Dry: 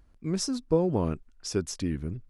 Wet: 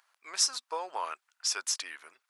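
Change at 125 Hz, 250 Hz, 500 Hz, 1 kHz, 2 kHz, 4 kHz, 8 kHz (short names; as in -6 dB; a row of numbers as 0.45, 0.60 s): under -40 dB, -32.0 dB, -15.0 dB, +3.5 dB, +7.0 dB, +7.0 dB, +7.0 dB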